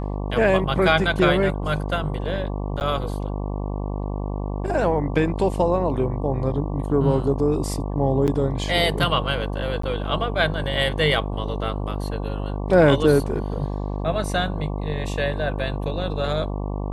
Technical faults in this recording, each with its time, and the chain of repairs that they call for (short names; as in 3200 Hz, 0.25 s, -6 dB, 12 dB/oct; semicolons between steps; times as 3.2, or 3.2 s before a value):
buzz 50 Hz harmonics 23 -27 dBFS
2.8–2.81 gap 9.8 ms
8.27–8.28 gap 8.4 ms
9.82–9.83 gap 14 ms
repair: de-hum 50 Hz, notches 23; interpolate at 2.8, 9.8 ms; interpolate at 8.27, 8.4 ms; interpolate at 9.82, 14 ms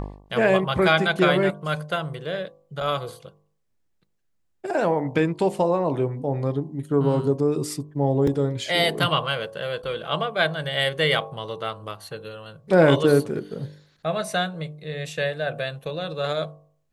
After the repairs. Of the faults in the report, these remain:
none